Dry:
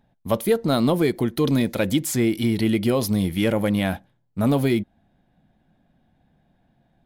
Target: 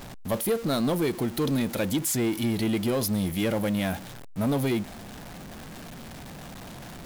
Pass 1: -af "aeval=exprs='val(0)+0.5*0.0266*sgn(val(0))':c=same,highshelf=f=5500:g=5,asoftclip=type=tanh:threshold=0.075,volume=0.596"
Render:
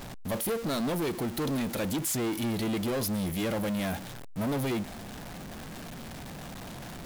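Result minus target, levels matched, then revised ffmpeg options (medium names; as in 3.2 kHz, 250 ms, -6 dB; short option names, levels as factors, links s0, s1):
saturation: distortion +9 dB
-af "aeval=exprs='val(0)+0.5*0.0266*sgn(val(0))':c=same,highshelf=f=5500:g=5,asoftclip=type=tanh:threshold=0.2,volume=0.596"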